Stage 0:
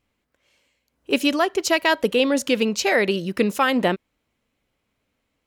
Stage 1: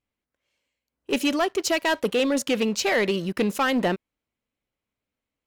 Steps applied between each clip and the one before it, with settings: waveshaping leveller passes 2; trim -8.5 dB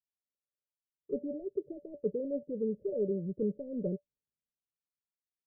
rippled Chebyshev low-pass 600 Hz, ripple 9 dB; three bands expanded up and down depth 40%; trim -4.5 dB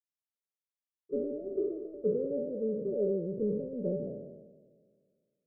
spectral sustain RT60 2.02 s; upward expansion 1.5:1, over -48 dBFS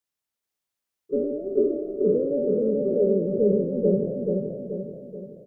feedback delay 431 ms, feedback 48%, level -3 dB; trim +8 dB

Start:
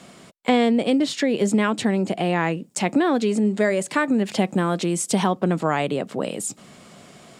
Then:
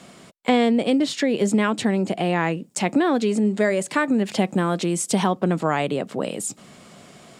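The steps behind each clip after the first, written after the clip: no audible change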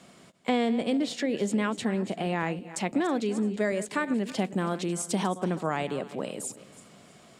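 backward echo that repeats 162 ms, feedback 46%, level -14 dB; trim -7.5 dB

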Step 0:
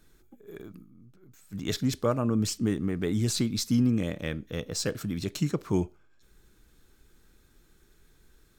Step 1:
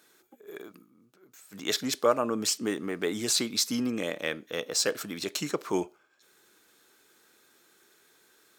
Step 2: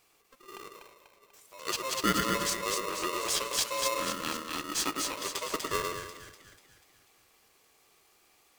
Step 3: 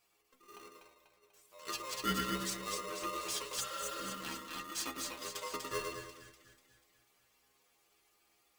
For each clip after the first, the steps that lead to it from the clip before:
high-pass 450 Hz 12 dB/octave; trim +5.5 dB
two-band feedback delay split 810 Hz, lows 105 ms, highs 245 ms, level -3 dB; polarity switched at an audio rate 790 Hz; trim -4.5 dB
inharmonic resonator 61 Hz, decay 0.33 s, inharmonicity 0.008; spectral replace 3.63–4.09 s, 560–5900 Hz after

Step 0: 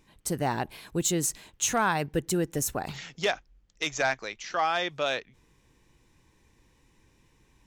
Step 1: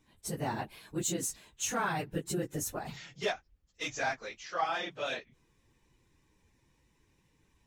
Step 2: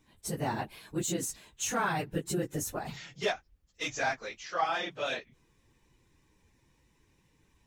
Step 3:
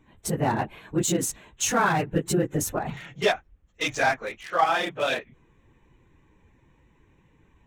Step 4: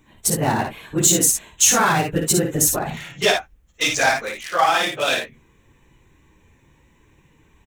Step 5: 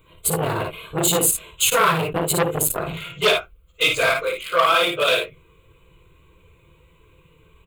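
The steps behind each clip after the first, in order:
phase randomisation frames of 50 ms; trim -6.5 dB
de-esser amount 60%; trim +2 dB
local Wiener filter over 9 samples; trim +8.5 dB
treble shelf 3.6 kHz +12 dB; on a send: early reflections 55 ms -5.5 dB, 68 ms -13.5 dB; on the sum: trim +2.5 dB
static phaser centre 1.2 kHz, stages 8; on a send at -6.5 dB: reverberation RT60 0.15 s, pre-delay 3 ms; on the sum: transformer saturation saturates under 1.8 kHz; trim +4.5 dB

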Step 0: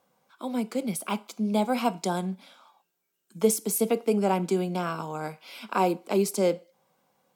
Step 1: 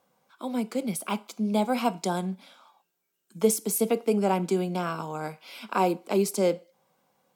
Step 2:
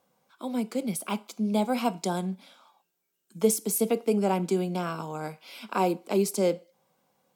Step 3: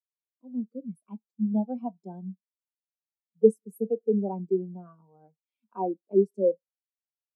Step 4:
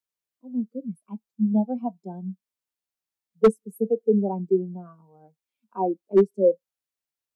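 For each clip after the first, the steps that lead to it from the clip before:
no audible change
peaking EQ 1.3 kHz -2.5 dB 2.2 oct
spectral contrast expander 2.5:1; trim +4.5 dB
hard clipper -14 dBFS, distortion -14 dB; trim +4.5 dB

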